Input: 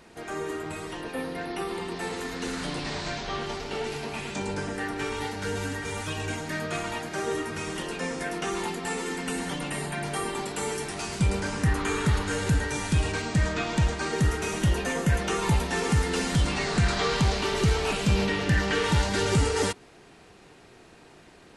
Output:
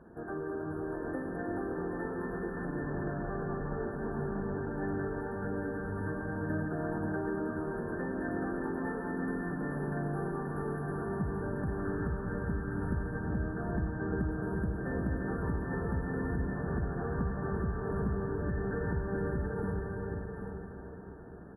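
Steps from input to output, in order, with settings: weighting filter D; FFT band-reject 1800–10000 Hz; tilt -4.5 dB/oct; compressor, threshold -28 dBFS, peak gain reduction 16 dB; on a send: echo 0.783 s -7 dB; on the sum: digital reverb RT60 4.9 s, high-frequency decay 0.85×, pre-delay 55 ms, DRR 1.5 dB; gain -6.5 dB

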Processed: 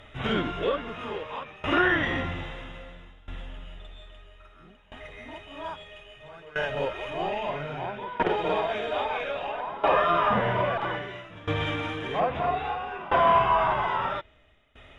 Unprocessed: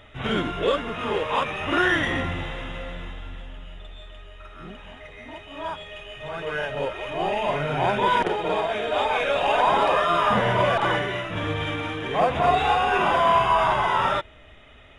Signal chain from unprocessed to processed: treble ducked by the level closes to 2700 Hz, closed at -17 dBFS; tremolo saw down 0.61 Hz, depth 90%

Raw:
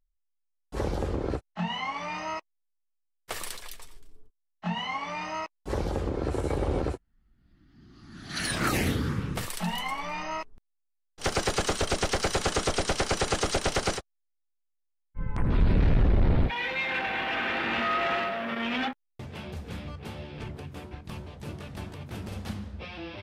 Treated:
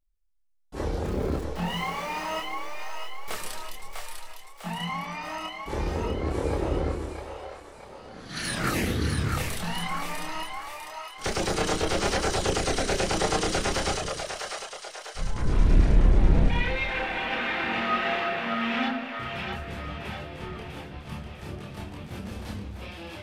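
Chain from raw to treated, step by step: 1.04–3.34 zero-crossing step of -36.5 dBFS; split-band echo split 500 Hz, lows 0.142 s, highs 0.649 s, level -5 dB; chorus voices 4, 0.31 Hz, delay 28 ms, depth 3.3 ms; gain +2.5 dB

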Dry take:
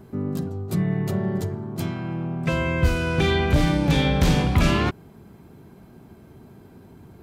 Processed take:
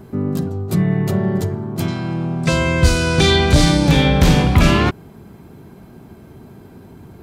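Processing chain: 1.88–3.9 band shelf 6100 Hz +10 dB; gain +6.5 dB

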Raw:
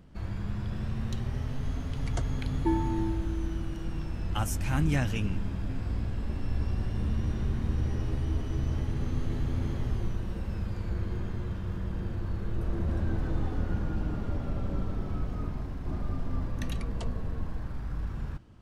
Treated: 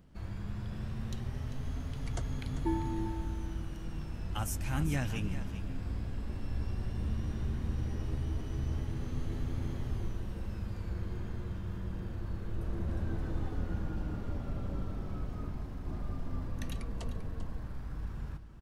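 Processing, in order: high shelf 7800 Hz +6 dB; echo 0.394 s -11.5 dB; gain -5.5 dB

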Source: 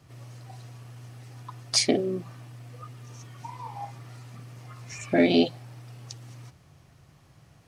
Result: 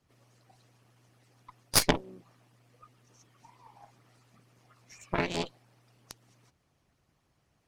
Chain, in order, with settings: harmonic-percussive split harmonic -13 dB; added harmonics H 3 -12 dB, 4 -7 dB, 6 -17 dB, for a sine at -9.5 dBFS; gain +3 dB

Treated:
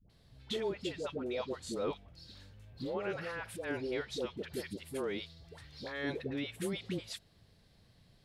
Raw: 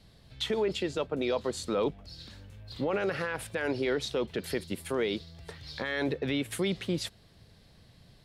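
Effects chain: dispersion highs, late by 98 ms, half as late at 620 Hz; gain -7 dB

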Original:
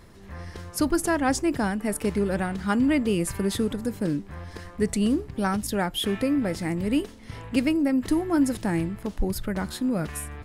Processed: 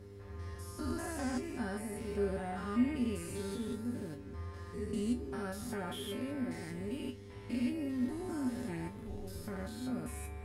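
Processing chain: stepped spectrum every 0.2 s; buzz 100 Hz, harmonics 5, -42 dBFS -4 dB/oct; resonator 81 Hz, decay 0.21 s, harmonics odd, mix 90%

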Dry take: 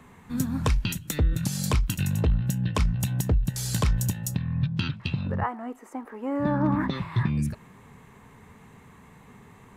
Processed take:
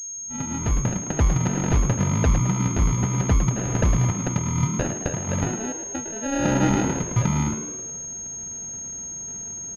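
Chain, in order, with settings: opening faded in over 0.94 s; 4.71–5.28 tilt shelf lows -6 dB, about 940 Hz; sample-and-hold 40×; frequency-shifting echo 0.107 s, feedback 49%, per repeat +75 Hz, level -9 dB; pulse-width modulation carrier 6500 Hz; gain +3 dB

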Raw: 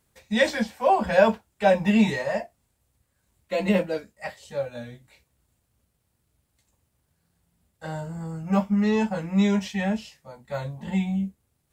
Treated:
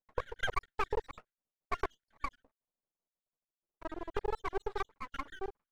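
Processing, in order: random spectral dropouts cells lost 64%; wide varispeed 2.05×; gate with hold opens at -46 dBFS; low-pass opened by the level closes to 1300 Hz, open at -20.5 dBFS; high shelf 6000 Hz -11.5 dB; band-pass sweep 630 Hz -> 1700 Hz, 4.06–6.28; compressor 16:1, threshold -35 dBFS, peak gain reduction 14.5 dB; half-wave rectifier; Doppler distortion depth 0.23 ms; gain +9.5 dB

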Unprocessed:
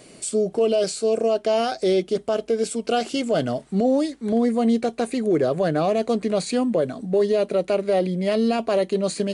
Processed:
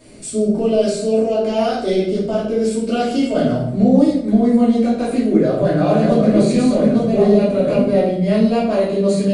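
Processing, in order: 5.16–7.83 reverse delay 0.693 s, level -2.5 dB; low shelf 200 Hz +10 dB; shoebox room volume 180 m³, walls mixed, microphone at 2.7 m; gain -7.5 dB

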